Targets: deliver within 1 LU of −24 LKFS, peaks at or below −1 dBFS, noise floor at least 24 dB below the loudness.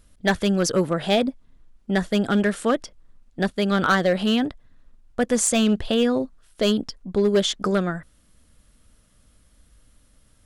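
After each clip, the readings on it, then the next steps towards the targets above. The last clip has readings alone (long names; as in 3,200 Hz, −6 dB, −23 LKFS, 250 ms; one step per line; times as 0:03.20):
share of clipped samples 0.5%; peaks flattened at −12.5 dBFS; integrated loudness −22.5 LKFS; sample peak −12.5 dBFS; target loudness −24.0 LKFS
→ clipped peaks rebuilt −12.5 dBFS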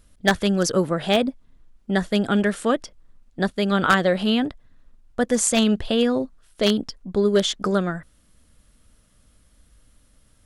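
share of clipped samples 0.0%; integrated loudness −22.0 LKFS; sample peak −3.5 dBFS; target loudness −24.0 LKFS
→ level −2 dB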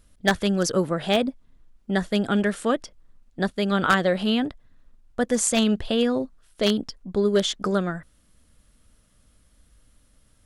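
integrated loudness −24.0 LKFS; sample peak −5.5 dBFS; background noise floor −61 dBFS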